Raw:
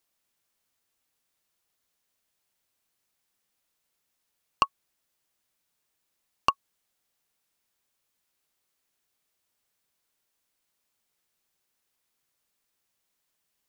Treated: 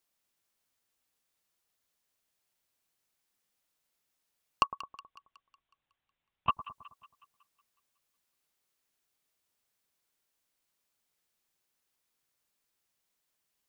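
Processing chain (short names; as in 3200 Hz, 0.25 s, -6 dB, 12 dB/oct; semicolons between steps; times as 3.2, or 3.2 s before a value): 4.64–6.51 LPC vocoder at 8 kHz whisper; split-band echo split 1200 Hz, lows 0.107 s, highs 0.184 s, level -14 dB; gain -3 dB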